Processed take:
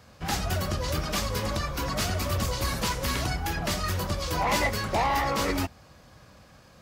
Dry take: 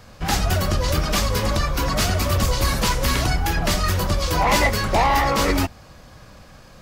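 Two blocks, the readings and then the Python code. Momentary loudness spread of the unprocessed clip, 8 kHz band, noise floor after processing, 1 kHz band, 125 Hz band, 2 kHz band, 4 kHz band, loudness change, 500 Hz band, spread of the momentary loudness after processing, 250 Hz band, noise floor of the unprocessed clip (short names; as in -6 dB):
4 LU, -7.0 dB, -54 dBFS, -7.0 dB, -8.0 dB, -7.0 dB, -7.0 dB, -7.5 dB, -7.0 dB, 5 LU, -7.0 dB, -46 dBFS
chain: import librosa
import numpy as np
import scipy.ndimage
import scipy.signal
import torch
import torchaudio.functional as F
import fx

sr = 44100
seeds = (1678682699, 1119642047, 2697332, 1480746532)

y = scipy.signal.sosfilt(scipy.signal.butter(2, 55.0, 'highpass', fs=sr, output='sos'), x)
y = y * 10.0 ** (-7.0 / 20.0)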